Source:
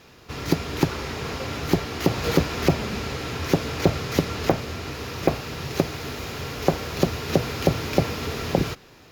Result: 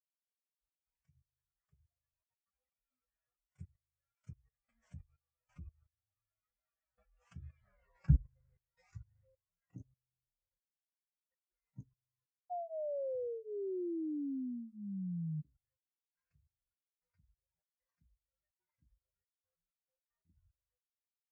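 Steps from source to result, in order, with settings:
spectral dynamics exaggerated over time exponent 3
source passing by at 0:03.31, 38 m/s, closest 2.3 metres
mains-hum notches 60/120/180/240/300 Hz
reverb reduction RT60 1.7 s
octave-band graphic EQ 125/250/1,000/2,000/8,000 Hz +8/+9/−4/−12/−10 dB
output level in coarse steps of 24 dB
sound drawn into the spectrogram fall, 0:05.34–0:06.59, 350–1,700 Hz −38 dBFS
notch comb filter 510 Hz
wrong playback speed 78 rpm record played at 33 rpm

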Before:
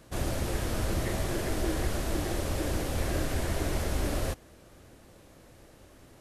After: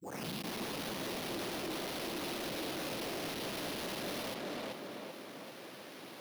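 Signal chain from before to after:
turntable start at the beginning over 0.90 s
high-shelf EQ 4,700 Hz +12 dB
sample-rate reduction 7,700 Hz, jitter 0%
hard clipping −30.5 dBFS, distortion −8 dB
high-pass filter 170 Hz 24 dB per octave
tape delay 389 ms, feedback 53%, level −4.5 dB, low-pass 2,800 Hz
soft clipping −36 dBFS, distortion −9 dB
dynamic equaliser 1,600 Hz, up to −5 dB, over −56 dBFS, Q 0.99
brickwall limiter −36.5 dBFS, peak gain reduction 3 dB
level +3.5 dB

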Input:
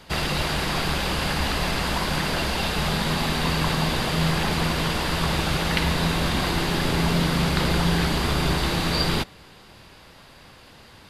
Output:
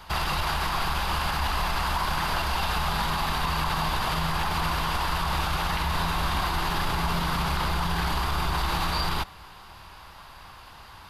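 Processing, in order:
octave-band graphic EQ 125/250/500/1,000/2,000/4,000/8,000 Hz −7/−11/−11/+6/−6/−4/−8 dB
brickwall limiter −23.5 dBFS, peak gain reduction 11 dB
level +6 dB

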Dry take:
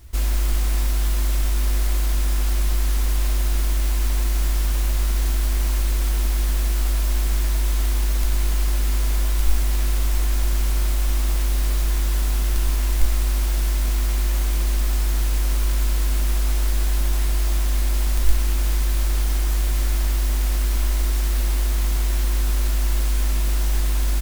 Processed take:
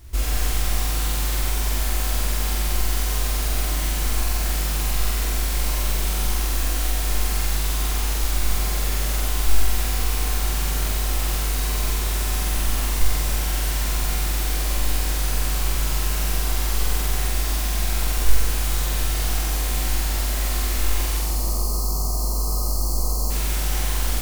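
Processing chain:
gain on a spectral selection 0:21.18–0:23.31, 1,300–4,100 Hz −26 dB
flutter between parallel walls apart 8 metres, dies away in 1.4 s

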